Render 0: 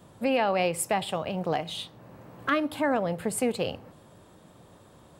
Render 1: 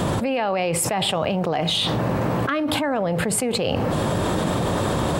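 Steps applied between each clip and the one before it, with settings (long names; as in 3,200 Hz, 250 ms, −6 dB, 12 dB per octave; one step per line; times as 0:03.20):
high-shelf EQ 9,100 Hz −8.5 dB
envelope flattener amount 100%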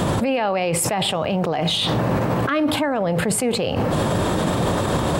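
brickwall limiter −16.5 dBFS, peak gain reduction 7 dB
level +4.5 dB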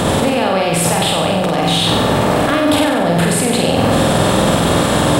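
compressor on every frequency bin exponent 0.6
flutter between parallel walls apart 8.1 metres, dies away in 0.96 s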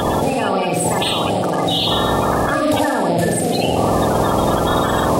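spectral magnitudes quantised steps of 30 dB
on a send at −15.5 dB: convolution reverb, pre-delay 68 ms
on the sum: level −2.5 dB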